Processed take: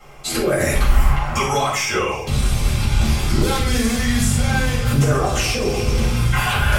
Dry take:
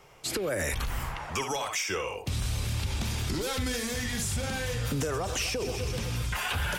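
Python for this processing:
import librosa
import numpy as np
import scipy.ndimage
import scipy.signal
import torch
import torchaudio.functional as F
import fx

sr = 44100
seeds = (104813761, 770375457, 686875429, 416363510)

y = x + 10.0 ** (-20.0 / 20.0) * np.pad(x, (int(352 * sr / 1000.0), 0))[:len(x)]
y = fx.room_shoebox(y, sr, seeds[0], volume_m3=370.0, walls='furnished', distance_m=6.9)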